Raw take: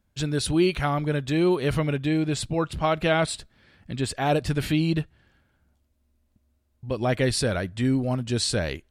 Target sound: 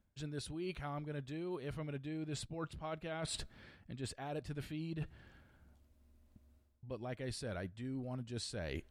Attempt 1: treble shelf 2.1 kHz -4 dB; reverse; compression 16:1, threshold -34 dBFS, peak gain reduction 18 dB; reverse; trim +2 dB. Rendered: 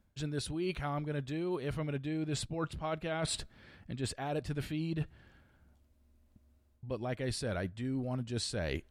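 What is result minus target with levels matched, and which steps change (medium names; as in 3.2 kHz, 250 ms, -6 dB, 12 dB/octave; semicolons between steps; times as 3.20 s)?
compression: peak gain reduction -6.5 dB
change: compression 16:1, threshold -41 dBFS, peak gain reduction 25 dB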